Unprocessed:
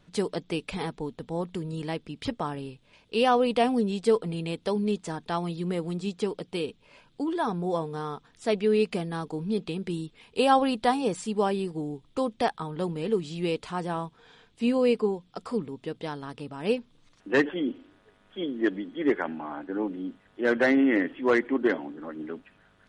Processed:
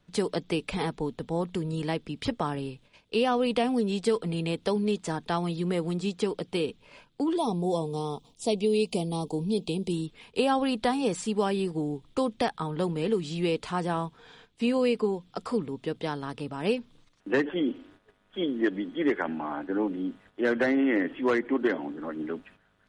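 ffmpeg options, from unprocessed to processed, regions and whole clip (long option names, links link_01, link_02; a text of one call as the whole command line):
ffmpeg -i in.wav -filter_complex "[0:a]asettb=1/sr,asplit=3[link_01][link_02][link_03];[link_01]atrim=end=7.374[link_04];[link_02]atrim=start=7.37:end=9.93,asetpts=PTS-STARTPTS,afade=type=in:duration=0.004:curve=qsin,afade=type=out:start_time=2.556:duration=0.004:curve=qsin,asuperstop=centerf=1600:order=4:qfactor=0.88,highshelf=frequency=6700:gain=8.5[link_05];[link_03]atrim=start=9.926[link_06];[link_04][link_05]acrossfade=duration=0.004:curve1=hsin:curve2=qsin[link_07];[link_07][link_06]acrossfade=duration=0.004:curve1=qsin:curve2=hsin,agate=range=-9dB:threshold=-56dB:ratio=16:detection=peak,acrossover=split=340|1400[link_08][link_09][link_10];[link_08]acompressor=threshold=-31dB:ratio=4[link_11];[link_09]acompressor=threshold=-30dB:ratio=4[link_12];[link_10]acompressor=threshold=-36dB:ratio=4[link_13];[link_11][link_12][link_13]amix=inputs=3:normalize=0,volume=3dB" out.wav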